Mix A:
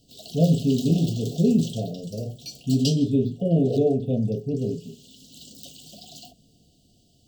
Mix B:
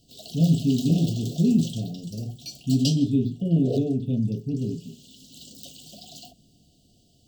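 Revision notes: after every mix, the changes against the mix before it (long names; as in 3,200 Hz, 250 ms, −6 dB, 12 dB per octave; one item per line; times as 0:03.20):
speech: add flat-topped bell 610 Hz −13 dB 1.2 octaves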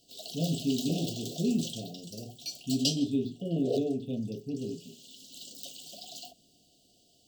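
master: add bass and treble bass −15 dB, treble 0 dB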